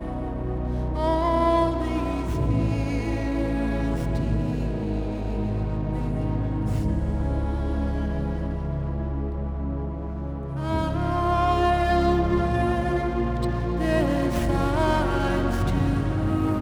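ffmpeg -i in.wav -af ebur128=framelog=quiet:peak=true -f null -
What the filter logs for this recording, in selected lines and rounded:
Integrated loudness:
  I:         -25.3 LUFS
  Threshold: -35.3 LUFS
Loudness range:
  LRA:         5.0 LU
  Threshold: -45.4 LUFS
  LRA low:   -28.3 LUFS
  LRA high:  -23.3 LUFS
True peak:
  Peak:       -9.4 dBFS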